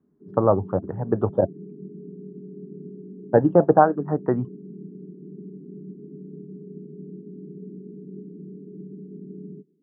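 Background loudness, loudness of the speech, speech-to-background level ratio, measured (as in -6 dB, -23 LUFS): -40.5 LUFS, -21.5 LUFS, 19.0 dB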